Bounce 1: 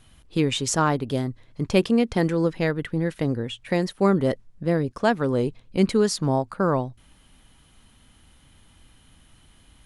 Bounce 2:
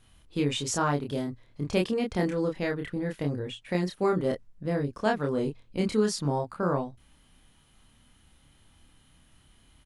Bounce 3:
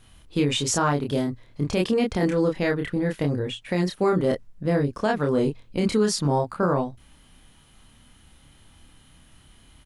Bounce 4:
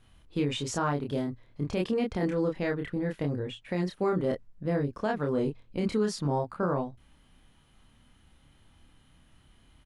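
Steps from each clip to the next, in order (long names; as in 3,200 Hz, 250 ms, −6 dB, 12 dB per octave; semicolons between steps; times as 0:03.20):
double-tracking delay 28 ms −2.5 dB; level −7 dB
brickwall limiter −19.5 dBFS, peak gain reduction 7.5 dB; level +6.5 dB
high-shelf EQ 4,400 Hz −8.5 dB; level −6 dB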